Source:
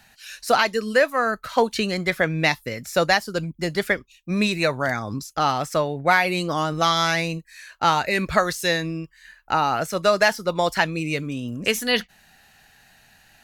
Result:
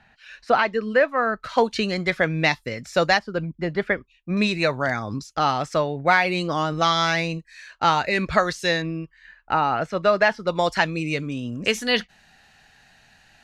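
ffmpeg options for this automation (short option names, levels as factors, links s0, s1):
-af "asetnsamples=n=441:p=0,asendcmd='1.4 lowpass f 5800;3.19 lowpass f 2200;4.37 lowpass f 5700;8.82 lowpass f 2900;10.47 lowpass f 6700',lowpass=2400"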